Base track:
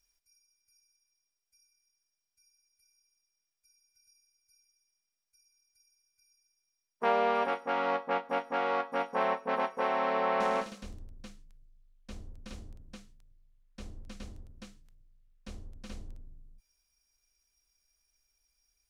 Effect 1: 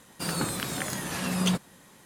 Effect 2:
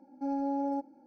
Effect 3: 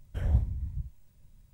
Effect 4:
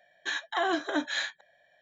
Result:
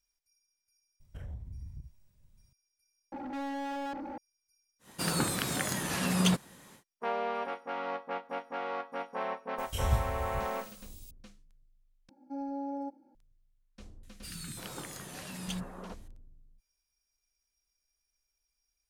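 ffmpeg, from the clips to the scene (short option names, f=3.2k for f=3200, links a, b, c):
-filter_complex "[3:a]asplit=2[a][b];[2:a]asplit=2[c][d];[1:a]asplit=2[e][f];[0:a]volume=-6dB[g];[a]acompressor=threshold=-32dB:ratio=6:attack=3.2:release=140:knee=1:detection=peak[h];[c]asplit=2[i][j];[j]highpass=f=720:p=1,volume=42dB,asoftclip=type=tanh:threshold=-23.5dB[k];[i][k]amix=inputs=2:normalize=0,lowpass=f=1.9k:p=1,volume=-6dB[l];[b]aexciter=amount=11.5:drive=4.9:freq=2.5k[m];[f]acrossover=split=250|1600[n][o][p];[n]adelay=40[q];[o]adelay=340[r];[q][r][p]amix=inputs=3:normalize=0[s];[g]asplit=3[t][u][v];[t]atrim=end=3.124[w];[l]atrim=end=1.06,asetpts=PTS-STARTPTS,volume=-7.5dB[x];[u]atrim=start=4.176:end=12.094[y];[d]atrim=end=1.06,asetpts=PTS-STARTPTS,volume=-5.5dB[z];[v]atrim=start=13.146[aa];[h]atrim=end=1.53,asetpts=PTS-STARTPTS,volume=-6.5dB,afade=t=in:d=0.004:c=hsin,afade=t=out:st=1.526:d=0.004:c=hsin,adelay=1000[ab];[e]atrim=end=2.05,asetpts=PTS-STARTPTS,volume=-0.5dB,afade=t=in:d=0.1,afade=t=out:st=1.95:d=0.1,adelay=4790[ac];[m]atrim=end=1.53,asetpts=PTS-STARTPTS,volume=-3dB,afade=t=in:d=0.004:c=hsin,afade=t=out:st=1.526:d=0.004:c=hsin,adelay=9580[ad];[s]atrim=end=2.05,asetpts=PTS-STARTPTS,volume=-10.5dB,afade=t=in:d=0.004:c=hsin,afade=t=out:st=2.046:d=0.004:c=hsin,adelay=14030[ae];[w][x]acrossfade=d=0.004:c1=hsin:c2=hsin[af];[af][y]acrossfade=d=0.004:c1=hsin:c2=hsin[ag];[ag][z]acrossfade=d=0.004:c1=hsin:c2=hsin[ah];[ah][aa]acrossfade=d=0.004:c1=hsin:c2=hsin[ai];[ai][ab][ac][ad][ae]amix=inputs=5:normalize=0"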